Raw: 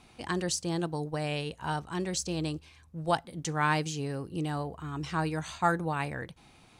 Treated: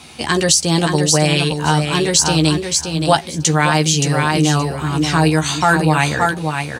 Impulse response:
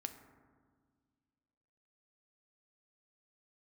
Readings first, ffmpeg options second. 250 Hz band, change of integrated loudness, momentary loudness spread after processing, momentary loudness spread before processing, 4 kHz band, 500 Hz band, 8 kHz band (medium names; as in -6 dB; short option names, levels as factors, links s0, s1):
+16.5 dB, +17.0 dB, 5 LU, 9 LU, +21.0 dB, +15.5 dB, +22.0 dB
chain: -filter_complex "[0:a]highpass=73,acrossover=split=380|2600[s0][s1][s2];[s2]acontrast=82[s3];[s0][s1][s3]amix=inputs=3:normalize=0,asplit=2[s4][s5];[s5]adelay=13,volume=0.562[s6];[s4][s6]amix=inputs=2:normalize=0,aecho=1:1:573|1146|1719:0.473|0.0757|0.0121,alimiter=level_in=5.96:limit=0.891:release=50:level=0:latency=1,volume=0.891"